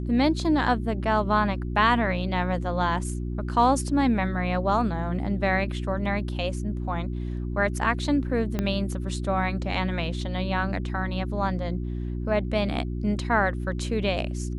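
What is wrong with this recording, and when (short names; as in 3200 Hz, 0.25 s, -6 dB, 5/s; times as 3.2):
hum 60 Hz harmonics 6 -30 dBFS
8.59 pop -13 dBFS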